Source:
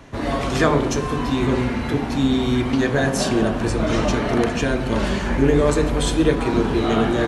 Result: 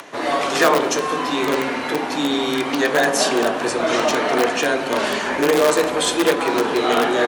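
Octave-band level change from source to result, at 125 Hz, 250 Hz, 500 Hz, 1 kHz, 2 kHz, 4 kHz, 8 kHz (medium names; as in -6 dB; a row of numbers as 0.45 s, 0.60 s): -15.0 dB, -3.5 dB, +2.5 dB, +5.5 dB, +5.5 dB, +6.0 dB, +6.0 dB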